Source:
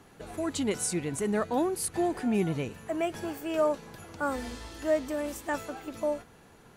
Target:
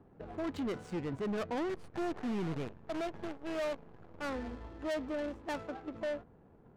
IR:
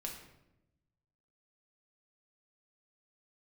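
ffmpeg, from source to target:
-filter_complex "[0:a]asplit=3[link_01][link_02][link_03];[link_01]afade=type=out:start_time=1.68:duration=0.02[link_04];[link_02]acrusher=bits=6:dc=4:mix=0:aa=0.000001,afade=type=in:start_time=1.68:duration=0.02,afade=type=out:start_time=4.23:duration=0.02[link_05];[link_03]afade=type=in:start_time=4.23:duration=0.02[link_06];[link_04][link_05][link_06]amix=inputs=3:normalize=0,asoftclip=type=hard:threshold=-29.5dB,adynamicsmooth=sensitivity=7.5:basefreq=600,volume=-2.5dB"

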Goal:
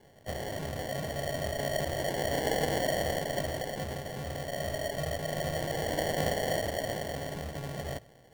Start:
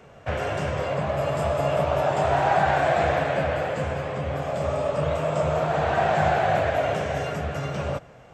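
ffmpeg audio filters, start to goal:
ffmpeg -i in.wav -af "bandreject=frequency=60:width_type=h:width=6,bandreject=frequency=120:width_type=h:width=6,acrusher=samples=35:mix=1:aa=0.000001,volume=-9dB" out.wav

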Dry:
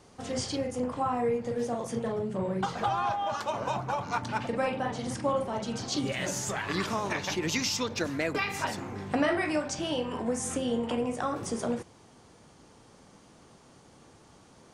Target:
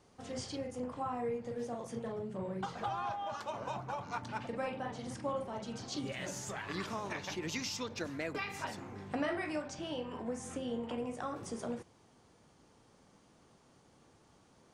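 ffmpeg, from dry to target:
ffmpeg -i in.wav -af "asetnsamples=nb_out_samples=441:pad=0,asendcmd='9.62 highshelf g -10;10.98 highshelf g -2.5',highshelf=frequency=7100:gain=-3,volume=-8.5dB" out.wav

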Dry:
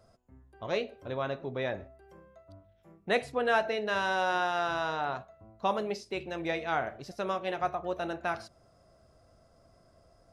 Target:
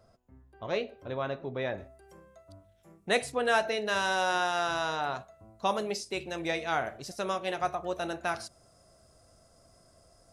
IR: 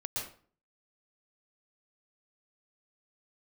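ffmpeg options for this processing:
-af "asetnsamples=nb_out_samples=441:pad=0,asendcmd='1.78 equalizer g 14',equalizer=frequency=9000:width=0.65:gain=-2.5"

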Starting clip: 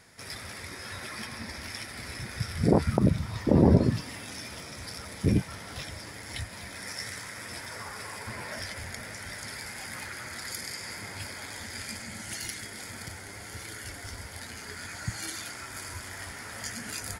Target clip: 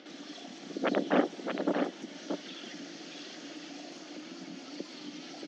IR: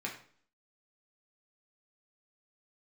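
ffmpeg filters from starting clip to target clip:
-filter_complex "[0:a]aemphasis=mode=reproduction:type=75kf,acrossover=split=1300[link_01][link_02];[link_01]acompressor=mode=upward:threshold=-36dB:ratio=2.5[link_03];[link_03][link_02]amix=inputs=2:normalize=0,asetrate=138474,aresample=44100,highpass=frequency=170:width=0.5412,highpass=frequency=170:width=1.3066,equalizer=frequency=180:width_type=q:width=4:gain=9,equalizer=frequency=290:width_type=q:width=4:gain=8,equalizer=frequency=550:width_type=q:width=4:gain=4,equalizer=frequency=1000:width_type=q:width=4:gain=-8,equalizer=frequency=3400:width_type=q:width=4:gain=7,lowpass=frequency=5800:width=0.5412,lowpass=frequency=5800:width=1.3066,aecho=1:1:629:0.531,volume=-7.5dB"

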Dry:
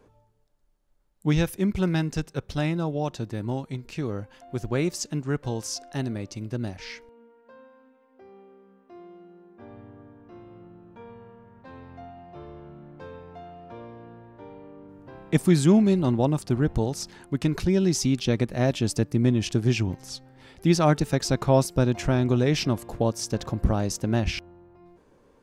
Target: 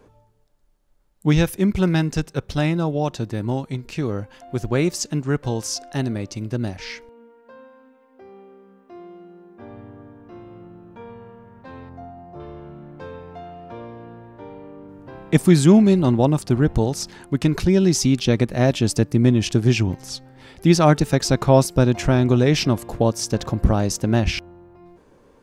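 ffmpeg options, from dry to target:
ffmpeg -i in.wav -filter_complex "[0:a]asettb=1/sr,asplit=3[link_01][link_02][link_03];[link_01]atrim=end=11.894[link_04];[link_02]atrim=start=11.89:end=12.4,asetpts=PTS-STARTPTS,afade=type=in:duration=0.004:curve=qsin,afade=type=out:start_time=0.506:duration=0.004:curve=qsin,equalizer=frequency=3000:width_type=o:width=1.6:gain=-13.5[link_05];[link_03]atrim=start=12.396[link_06];[link_04][link_05]acrossfade=duration=0.004:curve1=hsin:curve2=qsin[link_07];[link_07][link_06]acrossfade=duration=0.004:curve1=qsin:curve2=hsin,volume=5.5dB" out.wav

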